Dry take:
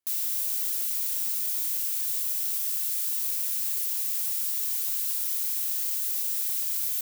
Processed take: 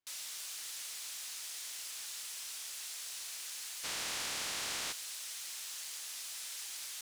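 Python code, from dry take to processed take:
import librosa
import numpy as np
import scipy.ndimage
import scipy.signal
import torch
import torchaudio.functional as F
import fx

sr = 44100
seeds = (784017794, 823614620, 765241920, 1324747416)

y = fx.spec_flatten(x, sr, power=0.31, at=(3.83, 4.91), fade=0.02)
y = fx.air_absorb(y, sr, metres=74.0)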